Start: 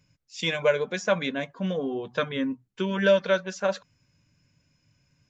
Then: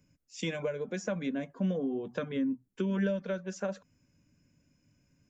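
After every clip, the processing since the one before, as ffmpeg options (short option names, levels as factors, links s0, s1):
-filter_complex "[0:a]equalizer=f=125:t=o:w=1:g=-6,equalizer=f=250:t=o:w=1:g=6,equalizer=f=1000:t=o:w=1:g=-5,equalizer=f=2000:t=o:w=1:g=-3,equalizer=f=4000:t=o:w=1:g=-10,acrossover=split=180[s0][s1];[s1]acompressor=threshold=0.0251:ratio=6[s2];[s0][s2]amix=inputs=2:normalize=0"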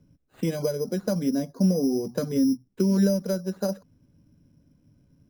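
-af "tiltshelf=f=1300:g=10,acrusher=samples=8:mix=1:aa=0.000001"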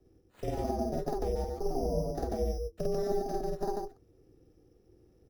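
-filter_complex "[0:a]acrossover=split=380|990[s0][s1][s2];[s0]acompressor=threshold=0.0316:ratio=4[s3];[s1]acompressor=threshold=0.0251:ratio=4[s4];[s2]acompressor=threshold=0.00355:ratio=4[s5];[s3][s4][s5]amix=inputs=3:normalize=0,aeval=exprs='val(0)*sin(2*PI*210*n/s)':c=same,aecho=1:1:49.56|142.9:1|0.891,volume=0.668"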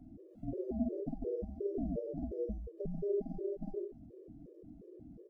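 -af "aeval=exprs='val(0)+0.5*0.0075*sgn(val(0))':c=same,firequalizer=gain_entry='entry(120,0);entry(210,11);entry(650,-2);entry(930,-27)':delay=0.05:min_phase=1,afftfilt=real='re*gt(sin(2*PI*2.8*pts/sr)*(1-2*mod(floor(b*sr/1024/320),2)),0)':imag='im*gt(sin(2*PI*2.8*pts/sr)*(1-2*mod(floor(b*sr/1024/320),2)),0)':win_size=1024:overlap=0.75,volume=0.422"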